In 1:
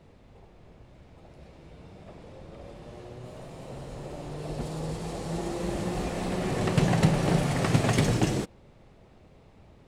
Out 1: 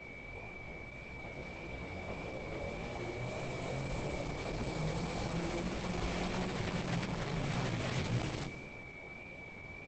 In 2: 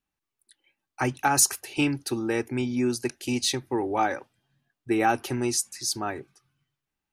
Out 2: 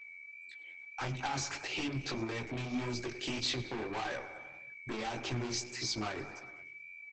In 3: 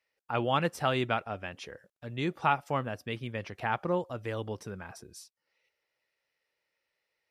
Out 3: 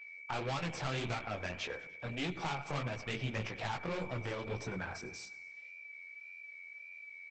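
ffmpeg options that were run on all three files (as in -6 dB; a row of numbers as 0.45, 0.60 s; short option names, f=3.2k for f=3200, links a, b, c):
-filter_complex "[0:a]alimiter=limit=-19.5dB:level=0:latency=1:release=211,acrossover=split=4400[a][b];[b]acompressor=threshold=-55dB:ratio=4:attack=1:release=60[c];[a][c]amix=inputs=2:normalize=0,asplit=2[d][e];[e]aecho=0:1:100|200|300|400|500:0.106|0.0614|0.0356|0.0207|0.012[f];[d][f]amix=inputs=2:normalize=0,aeval=exprs='(tanh(50.1*val(0)+0.2)-tanh(0.2))/50.1':c=same,acrossover=split=190|3000[g][h][i];[h]acompressor=threshold=-46dB:ratio=2.5[j];[g][j][i]amix=inputs=3:normalize=0,lowshelf=f=430:g=-4.5,bandreject=f=50:t=h:w=6,bandreject=f=100:t=h:w=6,bandreject=f=150:t=h:w=6,bandreject=f=200:t=h:w=6,bandreject=f=250:t=h:w=6,bandreject=f=300:t=h:w=6,bandreject=f=350:t=h:w=6,bandreject=f=400:t=h:w=6,bandreject=f=450:t=h:w=6,aeval=exprs='val(0)+0.00158*sin(2*PI*2300*n/s)':c=same,highshelf=f=6.1k:g=-3,flanger=delay=15.5:depth=7.5:speed=1.7,volume=12dB" -ar 48000 -c:a libopus -b:a 12k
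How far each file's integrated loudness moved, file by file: -11.5, -12.0, -7.5 LU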